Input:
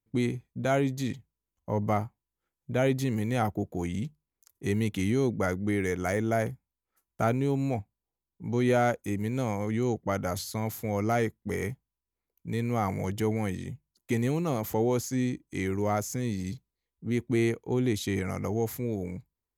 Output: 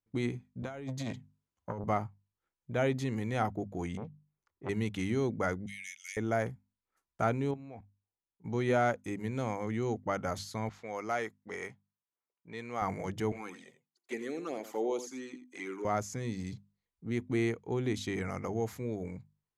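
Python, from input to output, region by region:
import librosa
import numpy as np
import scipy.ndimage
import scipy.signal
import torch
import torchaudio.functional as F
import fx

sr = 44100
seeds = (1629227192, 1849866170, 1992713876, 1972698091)

y = fx.chain(x, sr, fx.highpass(hz=59.0, slope=24),
    fx.over_compress(threshold_db=-30.0, ratio=-0.5),
    fx.transformer_sat(knee_hz=510.0), at=(0.62, 1.84))
y = fx.chain(y, sr, fx.lowpass(hz=1900.0, slope=12),
    fx.transformer_sat(knee_hz=630.0), at=(3.97, 4.69))
y = fx.chain(y, sr, fx.ellip_highpass(hz=2300.0, order=4, stop_db=60),
    fx.high_shelf(hz=3900.0, db=5.5), at=(5.66, 6.17))
y = fx.chain(y, sr, fx.bessel_lowpass(hz=3400.0, order=2),
    fx.low_shelf(hz=140.0, db=-7.0),
    fx.level_steps(step_db=14), at=(7.51, 8.45))
y = fx.chain(y, sr, fx.highpass(hz=640.0, slope=6),
    fx.env_lowpass(base_hz=1700.0, full_db=-30.5), at=(10.69, 12.82))
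y = fx.chain(y, sr, fx.highpass(hz=280.0, slope=24),
    fx.env_flanger(rest_ms=2.9, full_db=-25.0),
    fx.echo_single(ms=84, db=-12.5), at=(13.32, 15.85))
y = scipy.signal.sosfilt(scipy.signal.butter(2, 8000.0, 'lowpass', fs=sr, output='sos'), y)
y = fx.peak_eq(y, sr, hz=1200.0, db=4.0, octaves=1.6)
y = fx.hum_notches(y, sr, base_hz=50, count=5)
y = y * 10.0 ** (-5.0 / 20.0)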